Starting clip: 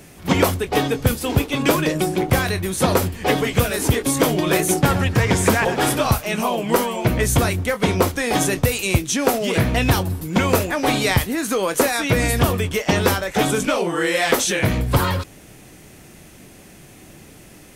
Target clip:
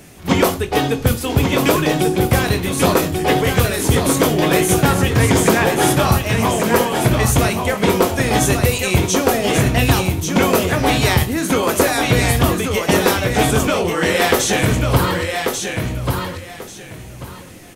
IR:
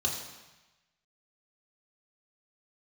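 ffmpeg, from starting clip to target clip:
-filter_complex "[0:a]aecho=1:1:1139|2278|3417:0.562|0.124|0.0272,asplit=2[a][b];[1:a]atrim=start_sample=2205,atrim=end_sample=4410,adelay=20[c];[b][c]afir=irnorm=-1:irlink=0,volume=-15.5dB[d];[a][d]amix=inputs=2:normalize=0,volume=1.5dB"

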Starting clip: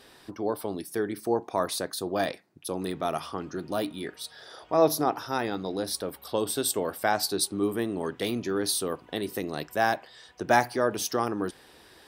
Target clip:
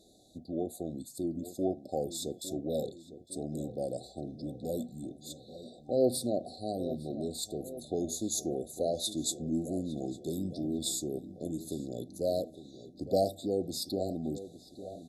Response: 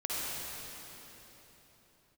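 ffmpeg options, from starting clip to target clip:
-filter_complex "[0:a]afftfilt=real='re*(1-between(b*sr/4096,970,4300))':imag='im*(1-between(b*sr/4096,970,4300))':win_size=4096:overlap=0.75,asetrate=35280,aresample=44100,asplit=2[a][b];[b]adelay=856,lowpass=f=2k:p=1,volume=-13dB,asplit=2[c][d];[d]adelay=856,lowpass=f=2k:p=1,volume=0.55,asplit=2[e][f];[f]adelay=856,lowpass=f=2k:p=1,volume=0.55,asplit=2[g][h];[h]adelay=856,lowpass=f=2k:p=1,volume=0.55,asplit=2[i][j];[j]adelay=856,lowpass=f=2k:p=1,volume=0.55,asplit=2[k][l];[l]adelay=856,lowpass=f=2k:p=1,volume=0.55[m];[a][c][e][g][i][k][m]amix=inputs=7:normalize=0,volume=-5.5dB"

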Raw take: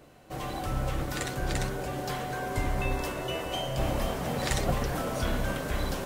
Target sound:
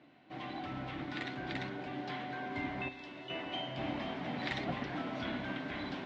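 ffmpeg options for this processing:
-filter_complex "[0:a]asettb=1/sr,asplit=3[a][b][c];[a]atrim=end=2.884[d];[b]atrim=start=2.88:end=3.3,asetpts=PTS-STARTPTS,afade=t=in:d=0.004:c=qsin,afade=t=out:st=0.416:d=0.004:c=qsin,acrossover=split=1000|2500[e][f][g];[e]acompressor=threshold=-40dB:ratio=4[h];[f]acompressor=threshold=-55dB:ratio=4[i];[g]acompressor=threshold=-43dB:ratio=4[j];[h][i][j]amix=inputs=3:normalize=0[k];[c]atrim=start=3.296[l];[d][k]acrossfade=d=0.004:c1=hsin:c2=qsin[m];[m][l]acrossfade=d=0.004:c1=qsin:c2=hsin,highpass=170,equalizer=f=280:t=q:w=4:g=7,equalizer=f=460:t=q:w=4:g=-9,equalizer=f=1.2k:t=q:w=4:g=-4,equalizer=f=2.1k:t=q:w=4:g=5,equalizer=f=3.6k:t=q:w=4:g=3,lowpass=f=3.9k:w=0.5412,lowpass=f=3.9k:w=1.3066,bandreject=f=550:w=12,volume=-6dB"

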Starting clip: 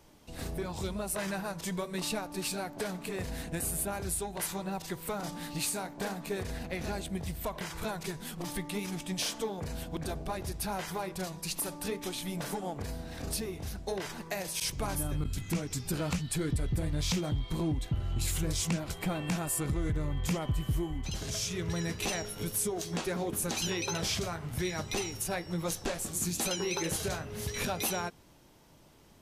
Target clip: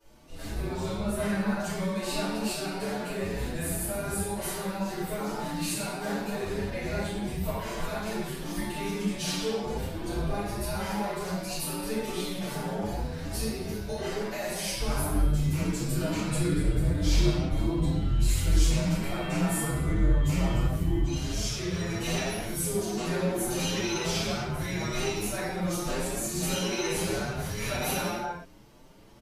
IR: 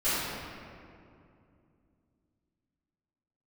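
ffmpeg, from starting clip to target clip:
-filter_complex "[0:a]asettb=1/sr,asplit=3[a][b][c];[a]atrim=end=0.944[d];[b]atrim=start=0.94:end=1.55,asetpts=PTS-STARTPTS,afade=t=in:d=0.004:c=qsin,afade=t=out:st=0.606:d=0.004:c=qsin,bass=f=250:g=6,treble=f=4k:g=-5[e];[c]atrim=start=1.546[f];[d][e]acrossfade=d=0.004:c1=hsin:c2=qsin[g];[g][f]acrossfade=d=0.004:c1=qsin:c2=hsin[h];[1:a]atrim=start_sample=2205,afade=t=out:st=0.41:d=0.01,atrim=end_sample=18522[i];[h][i]afir=irnorm=-1:irlink=0,asplit=2[j][k];[k]adelay=6.9,afreqshift=2.1[l];[j][l]amix=inputs=2:normalize=1,volume=-5dB"

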